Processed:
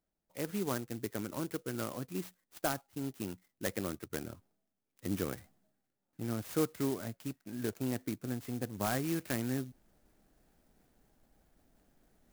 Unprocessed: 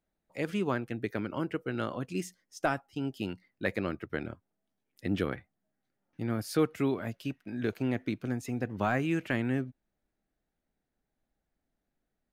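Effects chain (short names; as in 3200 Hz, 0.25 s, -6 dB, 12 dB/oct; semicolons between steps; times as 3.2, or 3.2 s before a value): reverse; upward compressor, threshold -46 dBFS; reverse; clock jitter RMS 0.087 ms; gain -4.5 dB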